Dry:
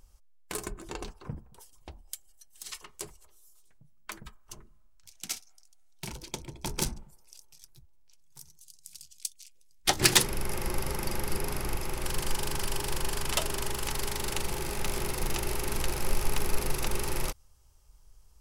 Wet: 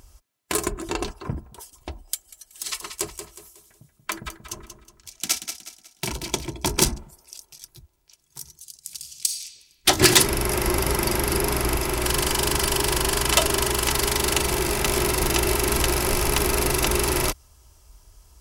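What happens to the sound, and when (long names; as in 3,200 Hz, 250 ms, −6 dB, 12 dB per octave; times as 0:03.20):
0:02.14–0:06.51: repeating echo 183 ms, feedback 37%, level −9 dB
0:08.97–0:09.41: thrown reverb, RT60 1.8 s, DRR 0.5 dB
whole clip: high-pass filter 50 Hz; comb filter 3 ms, depth 37%; boost into a limiter +12 dB; level −1 dB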